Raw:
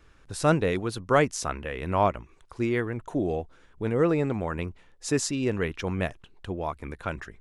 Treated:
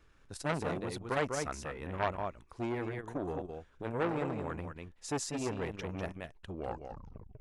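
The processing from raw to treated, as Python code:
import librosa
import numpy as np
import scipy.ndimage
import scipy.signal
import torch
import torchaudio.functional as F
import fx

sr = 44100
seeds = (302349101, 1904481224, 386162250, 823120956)

y = fx.tape_stop_end(x, sr, length_s=0.89)
y = y + 10.0 ** (-7.0 / 20.0) * np.pad(y, (int(197 * sr / 1000.0), 0))[:len(y)]
y = fx.transformer_sat(y, sr, knee_hz=1500.0)
y = y * 10.0 ** (-6.5 / 20.0)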